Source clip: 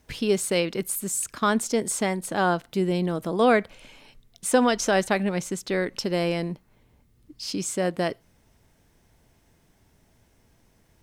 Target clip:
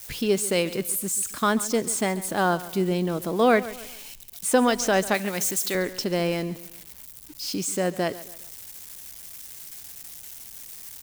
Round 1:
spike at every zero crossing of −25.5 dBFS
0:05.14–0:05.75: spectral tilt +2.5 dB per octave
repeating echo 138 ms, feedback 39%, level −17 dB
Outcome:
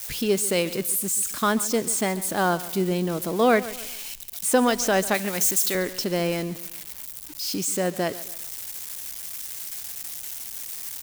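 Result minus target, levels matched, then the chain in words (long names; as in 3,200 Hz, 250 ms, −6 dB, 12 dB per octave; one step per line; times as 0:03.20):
spike at every zero crossing: distortion +6 dB
spike at every zero crossing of −32 dBFS
0:05.14–0:05.75: spectral tilt +2.5 dB per octave
repeating echo 138 ms, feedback 39%, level −17 dB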